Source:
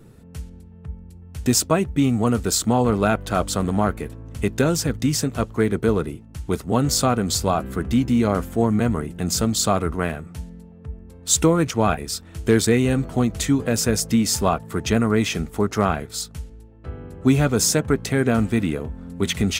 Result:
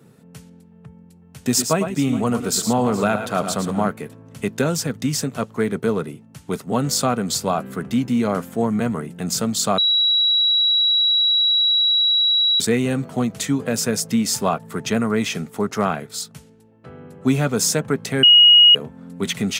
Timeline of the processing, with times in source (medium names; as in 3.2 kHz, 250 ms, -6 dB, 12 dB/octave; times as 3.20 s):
1.46–3.88 s: multi-tap echo 101/112/421 ms -13.5/-9.5/-18 dB
9.78–12.60 s: bleep 3.89 kHz -14 dBFS
18.23–18.75 s: bleep 2.89 kHz -6.5 dBFS
whole clip: high-pass 130 Hz 24 dB/octave; peaking EQ 330 Hz -6.5 dB 0.28 oct